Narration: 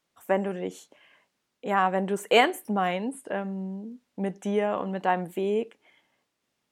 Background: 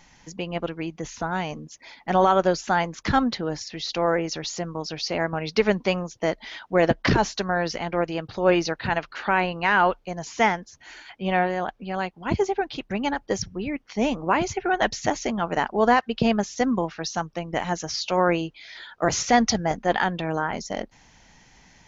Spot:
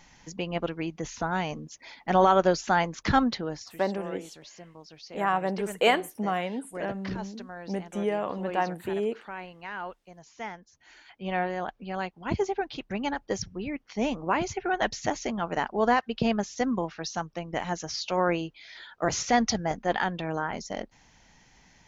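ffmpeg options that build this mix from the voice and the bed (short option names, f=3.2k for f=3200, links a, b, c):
-filter_complex "[0:a]adelay=3500,volume=-2.5dB[a];[1:a]volume=11.5dB,afade=t=out:st=3.23:d=0.61:silence=0.158489,afade=t=in:st=10.44:d=1.28:silence=0.223872[b];[a][b]amix=inputs=2:normalize=0"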